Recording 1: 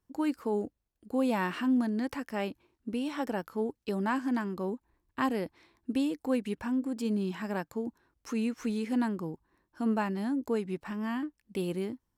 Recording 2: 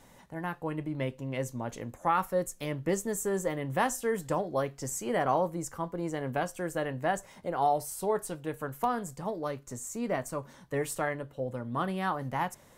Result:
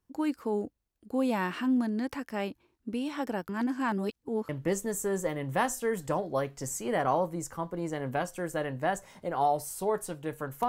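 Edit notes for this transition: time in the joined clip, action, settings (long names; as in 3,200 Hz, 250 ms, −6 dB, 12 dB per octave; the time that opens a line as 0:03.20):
recording 1
0:03.49–0:04.49: reverse
0:04.49: continue with recording 2 from 0:02.70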